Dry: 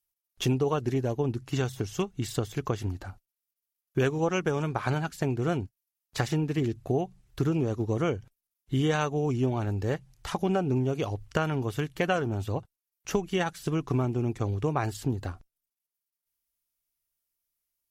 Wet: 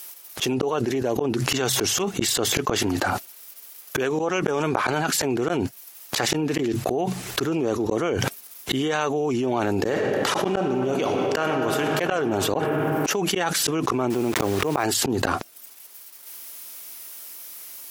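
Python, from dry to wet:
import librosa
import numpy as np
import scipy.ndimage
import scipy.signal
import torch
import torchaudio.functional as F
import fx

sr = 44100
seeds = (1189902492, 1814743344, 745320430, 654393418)

y = fx.reverb_throw(x, sr, start_s=9.71, length_s=2.25, rt60_s=2.7, drr_db=5.0)
y = fx.delta_hold(y, sr, step_db=-43.5, at=(14.1, 14.84))
y = fx.edit(y, sr, fx.fade_in_from(start_s=4.19, length_s=0.87, curve='qsin', floor_db=-20.5), tone=tone)
y = scipy.signal.sosfilt(scipy.signal.butter(2, 300.0, 'highpass', fs=sr, output='sos'), y)
y = fx.auto_swell(y, sr, attack_ms=395.0)
y = fx.env_flatten(y, sr, amount_pct=100)
y = F.gain(torch.from_numpy(y), 3.5).numpy()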